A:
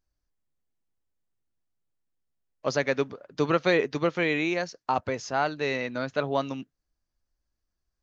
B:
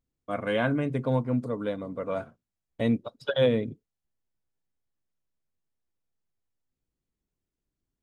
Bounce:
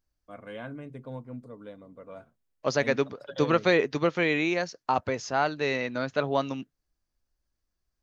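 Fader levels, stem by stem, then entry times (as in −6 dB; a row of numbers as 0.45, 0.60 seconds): +0.5, −13.5 decibels; 0.00, 0.00 seconds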